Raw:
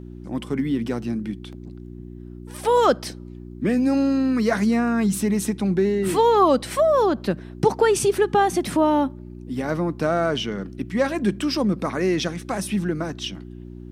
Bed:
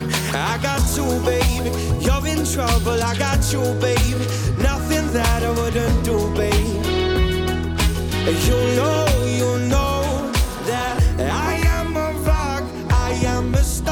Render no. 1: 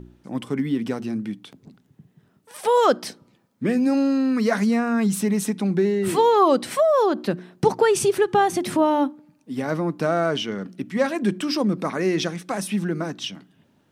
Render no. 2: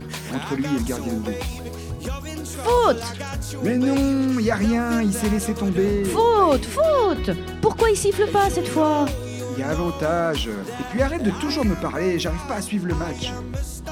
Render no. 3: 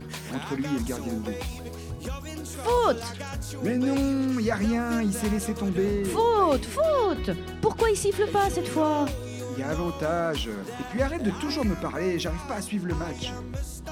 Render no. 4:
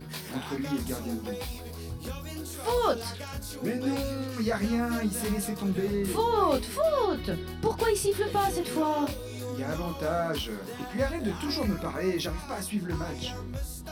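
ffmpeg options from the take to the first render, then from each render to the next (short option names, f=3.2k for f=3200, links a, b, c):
-af "bandreject=f=60:t=h:w=4,bandreject=f=120:t=h:w=4,bandreject=f=180:t=h:w=4,bandreject=f=240:t=h:w=4,bandreject=f=300:t=h:w=4,bandreject=f=360:t=h:w=4"
-filter_complex "[1:a]volume=-11dB[a];[0:a][a]amix=inputs=2:normalize=0"
-af "volume=-5dB"
-af "aexciter=amount=1.2:drive=6.4:freq=3.9k,flanger=delay=20:depth=5.1:speed=0.73"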